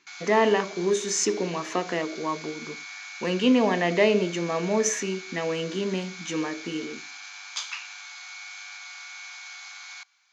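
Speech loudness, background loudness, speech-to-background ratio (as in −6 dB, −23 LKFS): −26.0 LKFS, −39.0 LKFS, 13.0 dB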